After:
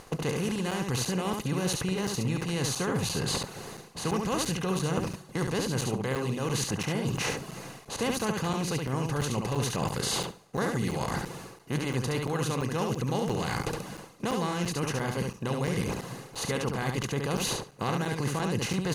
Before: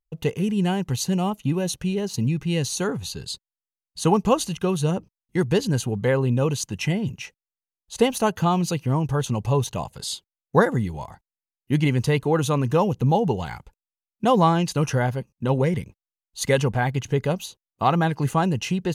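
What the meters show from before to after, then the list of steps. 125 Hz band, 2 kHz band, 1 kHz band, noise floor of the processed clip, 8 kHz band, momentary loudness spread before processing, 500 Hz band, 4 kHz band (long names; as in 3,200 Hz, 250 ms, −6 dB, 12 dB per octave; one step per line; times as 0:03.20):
−7.5 dB, −3.5 dB, −8.0 dB, −50 dBFS, −1.5 dB, 10 LU, −8.0 dB, −1.5 dB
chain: compressor on every frequency bin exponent 0.4
dynamic equaliser 720 Hz, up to −6 dB, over −29 dBFS, Q 0.95
four-comb reverb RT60 3.9 s, DRR 19.5 dB
reversed playback
downward compressor 5 to 1, threshold −31 dBFS, peak gain reduction 18.5 dB
reversed playback
reverb reduction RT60 0.69 s
on a send: repeating echo 70 ms, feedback 15%, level −4 dB
on the sum: regular buffer underruns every 0.34 s, samples 256, zero, from 0:00.71
level +3 dB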